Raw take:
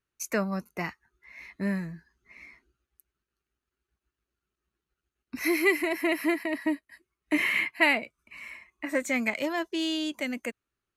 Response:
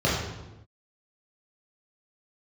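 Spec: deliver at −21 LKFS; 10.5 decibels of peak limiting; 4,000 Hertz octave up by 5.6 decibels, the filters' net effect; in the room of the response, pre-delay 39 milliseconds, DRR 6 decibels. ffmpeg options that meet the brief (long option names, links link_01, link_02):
-filter_complex "[0:a]equalizer=frequency=4000:width_type=o:gain=8,alimiter=limit=-17dB:level=0:latency=1,asplit=2[link_01][link_02];[1:a]atrim=start_sample=2205,adelay=39[link_03];[link_02][link_03]afir=irnorm=-1:irlink=0,volume=-22dB[link_04];[link_01][link_04]amix=inputs=2:normalize=0,volume=7dB"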